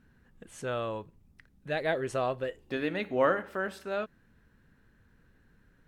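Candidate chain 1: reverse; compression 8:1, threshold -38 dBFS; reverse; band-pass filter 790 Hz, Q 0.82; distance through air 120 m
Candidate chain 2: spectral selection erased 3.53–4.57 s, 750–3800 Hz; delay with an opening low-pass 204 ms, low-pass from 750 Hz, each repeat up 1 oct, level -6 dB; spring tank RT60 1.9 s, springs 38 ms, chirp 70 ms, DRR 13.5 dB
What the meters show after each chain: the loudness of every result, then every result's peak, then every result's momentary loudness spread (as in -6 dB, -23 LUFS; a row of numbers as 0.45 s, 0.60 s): -46.0 LUFS, -31.5 LUFS; -31.0 dBFS, -13.5 dBFS; 7 LU, 19 LU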